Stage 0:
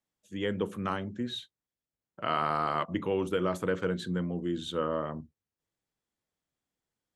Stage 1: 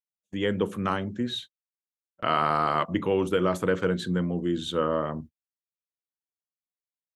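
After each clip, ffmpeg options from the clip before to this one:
ffmpeg -i in.wav -af "agate=range=-29dB:threshold=-46dB:ratio=16:detection=peak,volume=5dB" out.wav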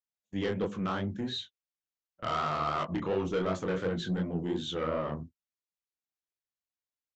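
ffmpeg -i in.wav -af "lowshelf=frequency=63:gain=6.5,aresample=16000,asoftclip=type=tanh:threshold=-21.5dB,aresample=44100,flanger=delay=20:depth=7.6:speed=2.8" out.wav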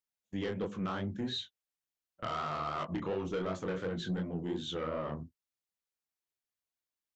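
ffmpeg -i in.wav -af "alimiter=level_in=3.5dB:limit=-24dB:level=0:latency=1:release=405,volume=-3.5dB" out.wav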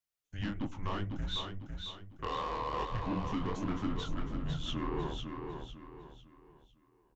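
ffmpeg -i in.wav -filter_complex "[0:a]asplit=2[link_01][link_02];[link_02]aecho=0:1:501|1002|1503|2004:0.531|0.191|0.0688|0.0248[link_03];[link_01][link_03]amix=inputs=2:normalize=0,afreqshift=-200" out.wav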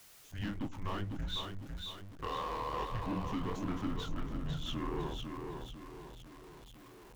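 ffmpeg -i in.wav -af "aeval=exprs='val(0)+0.5*0.00422*sgn(val(0))':channel_layout=same,volume=-2.5dB" out.wav

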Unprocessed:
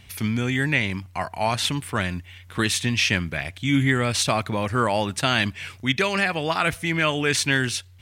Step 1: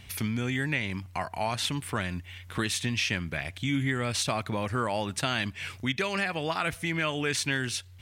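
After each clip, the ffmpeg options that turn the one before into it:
ffmpeg -i in.wav -af "acompressor=threshold=-31dB:ratio=2" out.wav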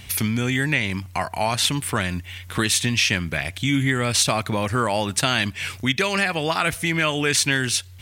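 ffmpeg -i in.wav -af "highshelf=frequency=4900:gain=6.5,volume=7dB" out.wav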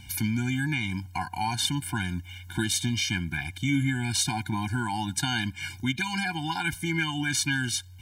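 ffmpeg -i in.wav -af "afftfilt=real='re*eq(mod(floor(b*sr/1024/350),2),0)':imag='im*eq(mod(floor(b*sr/1024/350),2),0)':win_size=1024:overlap=0.75,volume=-4dB" out.wav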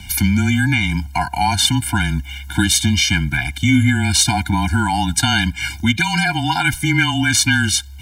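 ffmpeg -i in.wav -af "acontrast=75,afreqshift=-22,volume=5dB" out.wav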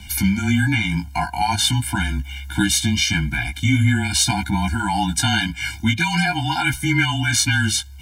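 ffmpeg -i in.wav -af "flanger=delay=15.5:depth=3:speed=0.44" out.wav

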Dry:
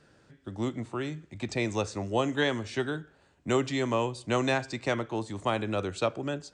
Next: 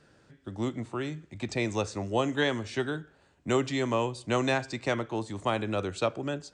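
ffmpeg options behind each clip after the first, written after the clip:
ffmpeg -i in.wav -af anull out.wav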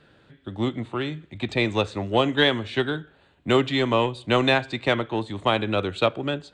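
ffmpeg -i in.wav -af "aeval=exprs='0.178*(cos(1*acos(clip(val(0)/0.178,-1,1)))-cos(1*PI/2))+0.00631*(cos(7*acos(clip(val(0)/0.178,-1,1)))-cos(7*PI/2))':channel_layout=same,highshelf=frequency=4500:width_type=q:width=3:gain=-7,volume=6.5dB" out.wav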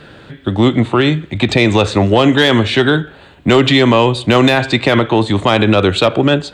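ffmpeg -i in.wav -af "aeval=exprs='0.473*(cos(1*acos(clip(val(0)/0.473,-1,1)))-cos(1*PI/2))+0.0335*(cos(5*acos(clip(val(0)/0.473,-1,1)))-cos(5*PI/2))':channel_layout=same,alimiter=level_in=16.5dB:limit=-1dB:release=50:level=0:latency=1,volume=-1dB" out.wav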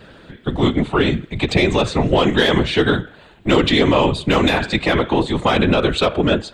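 ffmpeg -i in.wav -af "afftfilt=real='hypot(re,im)*cos(2*PI*random(0))':imag='hypot(re,im)*sin(2*PI*random(1))':win_size=512:overlap=0.75,volume=1.5dB" out.wav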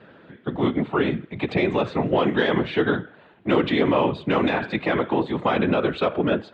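ffmpeg -i in.wav -af "highpass=140,lowpass=2300,volume=-4.5dB" out.wav

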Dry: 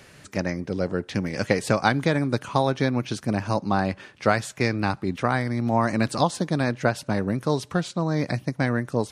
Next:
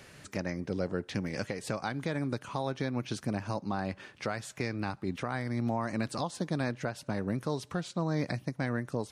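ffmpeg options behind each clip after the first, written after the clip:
ffmpeg -i in.wav -filter_complex "[0:a]asplit=2[link_01][link_02];[link_02]acompressor=threshold=-31dB:ratio=6,volume=-2.5dB[link_03];[link_01][link_03]amix=inputs=2:normalize=0,alimiter=limit=-12dB:level=0:latency=1:release=261,volume=-8dB" out.wav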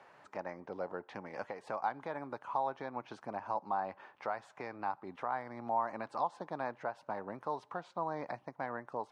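ffmpeg -i in.wav -af "bandpass=frequency=890:width_type=q:width=2.9:csg=0,volume=5.5dB" out.wav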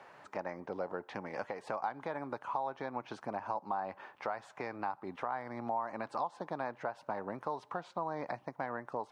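ffmpeg -i in.wav -af "acompressor=threshold=-38dB:ratio=2.5,volume=4dB" out.wav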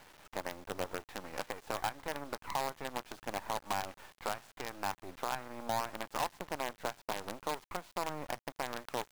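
ffmpeg -i in.wav -af "acrusher=bits=6:dc=4:mix=0:aa=0.000001" out.wav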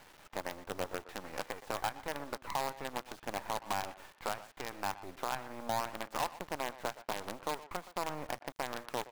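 ffmpeg -i in.wav -filter_complex "[0:a]asplit=2[link_01][link_02];[link_02]adelay=120,highpass=300,lowpass=3400,asoftclip=type=hard:threshold=-30.5dB,volume=-13dB[link_03];[link_01][link_03]amix=inputs=2:normalize=0" out.wav

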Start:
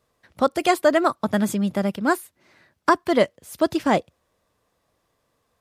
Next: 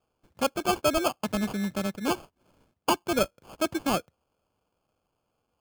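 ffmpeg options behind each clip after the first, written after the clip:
ffmpeg -i in.wav -af "acrusher=samples=23:mix=1:aa=0.000001,volume=-7dB" out.wav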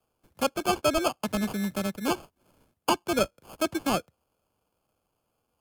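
ffmpeg -i in.wav -filter_complex "[0:a]equalizer=frequency=12000:width_type=o:width=0.75:gain=9,acrossover=split=140|640|7900[link_01][link_02][link_03][link_04];[link_04]acompressor=threshold=-41dB:ratio=6[link_05];[link_01][link_02][link_03][link_05]amix=inputs=4:normalize=0" out.wav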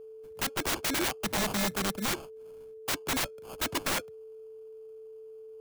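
ffmpeg -i in.wav -af "aeval=exprs='val(0)+0.00562*sin(2*PI*440*n/s)':channel_layout=same,aeval=exprs='(mod(17.8*val(0)+1,2)-1)/17.8':channel_layout=same,volume=1dB" out.wav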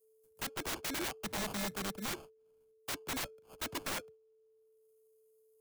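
ffmpeg -i in.wav -filter_complex "[0:a]agate=range=-33dB:threshold=-38dB:ratio=3:detection=peak,acrossover=split=480|7200[link_01][link_02][link_03];[link_03]acompressor=mode=upward:threshold=-50dB:ratio=2.5[link_04];[link_01][link_02][link_04]amix=inputs=3:normalize=0,volume=-8dB" out.wav

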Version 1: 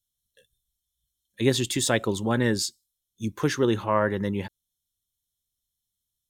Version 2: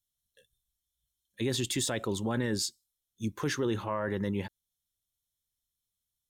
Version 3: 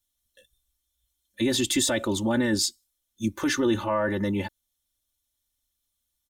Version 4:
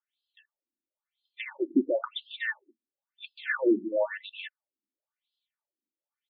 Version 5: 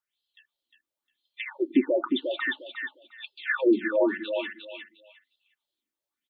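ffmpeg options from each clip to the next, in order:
ffmpeg -i in.wav -af "alimiter=limit=-17.5dB:level=0:latency=1:release=19,volume=-3.5dB" out.wav
ffmpeg -i in.wav -af "aecho=1:1:3.4:0.87,volume=4.5dB" out.wav
ffmpeg -i in.wav -af "afftfilt=real='re*between(b*sr/1024,280*pow(3700/280,0.5+0.5*sin(2*PI*0.98*pts/sr))/1.41,280*pow(3700/280,0.5+0.5*sin(2*PI*0.98*pts/sr))*1.41)':imag='im*between(b*sr/1024,280*pow(3700/280,0.5+0.5*sin(2*PI*0.98*pts/sr))/1.41,280*pow(3700/280,0.5+0.5*sin(2*PI*0.98*pts/sr))*1.41)':win_size=1024:overlap=0.75,volume=2.5dB" out.wav
ffmpeg -i in.wav -af "aecho=1:1:355|710|1065:0.531|0.106|0.0212,volume=2.5dB" out.wav

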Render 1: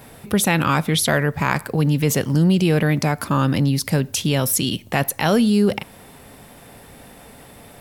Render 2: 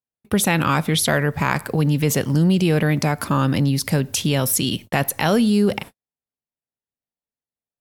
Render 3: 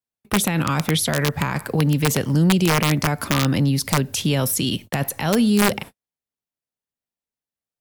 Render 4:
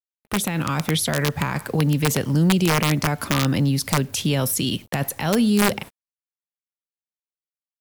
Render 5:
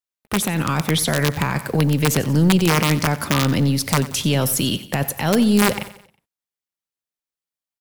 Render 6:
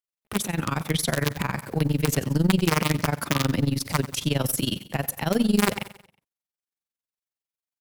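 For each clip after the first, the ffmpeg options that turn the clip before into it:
ffmpeg -i in.wav -filter_complex "[0:a]agate=range=-59dB:threshold=-33dB:ratio=16:detection=peak,asplit=2[link_01][link_02];[link_02]acompressor=threshold=-24dB:ratio=6,volume=-2.5dB[link_03];[link_01][link_03]amix=inputs=2:normalize=0,volume=-2.5dB" out.wav
ffmpeg -i in.wav -filter_complex "[0:a]acrossover=split=230[link_01][link_02];[link_02]alimiter=limit=-13dB:level=0:latency=1:release=19[link_03];[link_01][link_03]amix=inputs=2:normalize=0,aeval=exprs='(mod(3.16*val(0)+1,2)-1)/3.16':channel_layout=same" out.wav
ffmpeg -i in.wav -af "dynaudnorm=framelen=130:gausssize=11:maxgain=3dB,acrusher=bits=6:mix=0:aa=0.5,volume=-4dB" out.wav
ffmpeg -i in.wav -filter_complex "[0:a]asplit=2[link_01][link_02];[link_02]aeval=exprs='clip(val(0),-1,0.0355)':channel_layout=same,volume=-7dB[link_03];[link_01][link_03]amix=inputs=2:normalize=0,aecho=1:1:91|182|273|364:0.168|0.0755|0.034|0.0153" out.wav
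ffmpeg -i in.wav -af "tremolo=f=22:d=0.889,volume=-2dB" out.wav

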